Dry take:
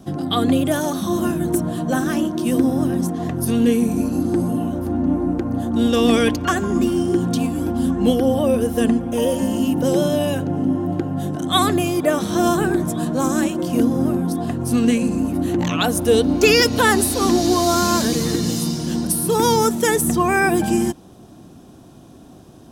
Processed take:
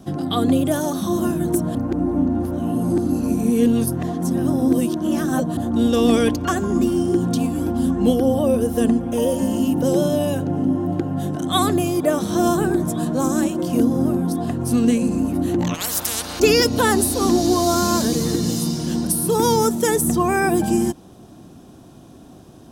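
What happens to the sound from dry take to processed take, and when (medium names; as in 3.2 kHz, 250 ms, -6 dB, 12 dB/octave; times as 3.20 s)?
1.75–5.57 s: reverse
15.74–16.40 s: spectrum-flattening compressor 10:1
whole clip: dynamic bell 2.2 kHz, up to -6 dB, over -35 dBFS, Q 0.81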